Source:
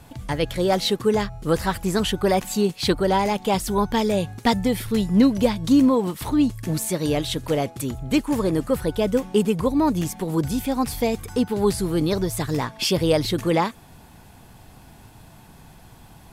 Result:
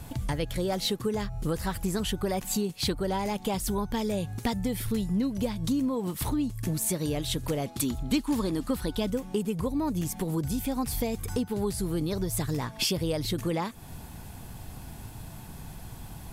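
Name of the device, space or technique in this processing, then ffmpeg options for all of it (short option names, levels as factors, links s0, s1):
ASMR close-microphone chain: -filter_complex "[0:a]lowshelf=f=190:g=7.5,acompressor=threshold=0.0398:ratio=4,highshelf=f=6600:g=7.5,asettb=1/sr,asplit=3[s0][s1][s2];[s0]atrim=end=7.664[s3];[s1]atrim=start=7.66:end=9.1,asetpts=PTS-STARTPTS,afade=t=in:d=0.004:c=qsin,afade=t=out:st=1.436:d=0.004:c=qsin,equalizer=f=125:t=o:w=1:g=-7,equalizer=f=250:t=o:w=1:g=6,equalizer=f=500:t=o:w=1:g=-4,equalizer=f=1000:t=o:w=1:g=4,equalizer=f=4000:t=o:w=1:g=8[s4];[s2]atrim=start=9.096[s5];[s3][s4]acrossfade=d=0.004:c1=hsin:c2=qsin[s6];[s6][s5]acrossfade=d=0.004:c1=qsin:c2=hsin"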